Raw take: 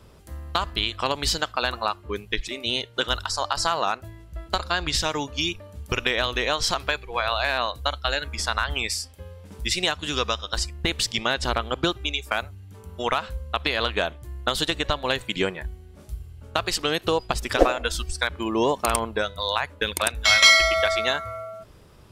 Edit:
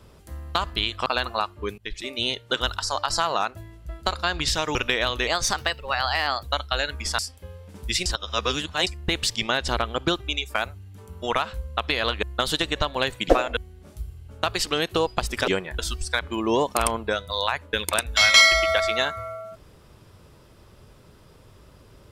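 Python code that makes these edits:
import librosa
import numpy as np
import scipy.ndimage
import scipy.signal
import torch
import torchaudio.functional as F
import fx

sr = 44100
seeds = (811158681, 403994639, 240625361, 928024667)

y = fx.edit(x, sr, fx.cut(start_s=1.06, length_s=0.47),
    fx.fade_in_from(start_s=2.25, length_s=0.29, floor_db=-18.5),
    fx.cut(start_s=5.22, length_s=0.7),
    fx.speed_span(start_s=6.44, length_s=1.33, speed=1.14),
    fx.cut(start_s=8.52, length_s=0.43),
    fx.reverse_span(start_s=9.82, length_s=0.81),
    fx.cut(start_s=13.99, length_s=0.32),
    fx.swap(start_s=15.38, length_s=0.31, other_s=17.6, other_length_s=0.27), tone=tone)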